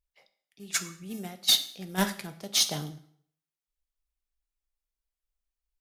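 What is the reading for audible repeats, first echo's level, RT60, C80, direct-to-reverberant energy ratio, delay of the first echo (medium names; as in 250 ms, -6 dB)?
no echo, no echo, 0.60 s, 17.0 dB, 9.0 dB, no echo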